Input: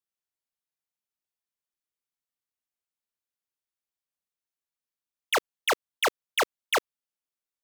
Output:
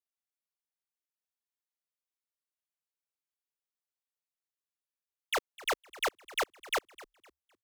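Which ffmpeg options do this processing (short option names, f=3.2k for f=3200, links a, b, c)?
-filter_complex "[0:a]acrossover=split=290[a][b];[a]acrusher=bits=6:dc=4:mix=0:aa=0.000001[c];[c][b]amix=inputs=2:normalize=0,asplit=4[d][e][f][g];[e]adelay=255,afreqshift=-37,volume=-19dB[h];[f]adelay=510,afreqshift=-74,volume=-29.5dB[i];[g]adelay=765,afreqshift=-111,volume=-39.9dB[j];[d][h][i][j]amix=inputs=4:normalize=0,volume=-6.5dB"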